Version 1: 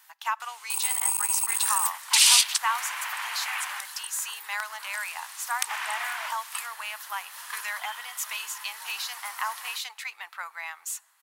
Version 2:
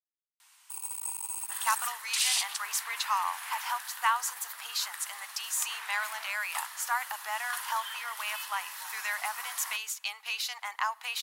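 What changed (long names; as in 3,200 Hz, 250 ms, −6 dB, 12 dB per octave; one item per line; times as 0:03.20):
speech: entry +1.40 s
first sound −10.5 dB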